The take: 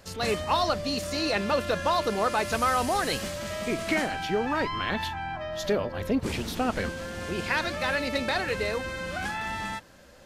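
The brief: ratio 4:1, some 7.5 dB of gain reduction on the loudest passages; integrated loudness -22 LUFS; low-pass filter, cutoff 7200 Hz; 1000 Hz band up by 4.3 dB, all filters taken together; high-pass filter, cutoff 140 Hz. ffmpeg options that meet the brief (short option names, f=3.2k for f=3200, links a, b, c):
-af "highpass=140,lowpass=7.2k,equalizer=f=1k:t=o:g=5.5,acompressor=threshold=-26dB:ratio=4,volume=8.5dB"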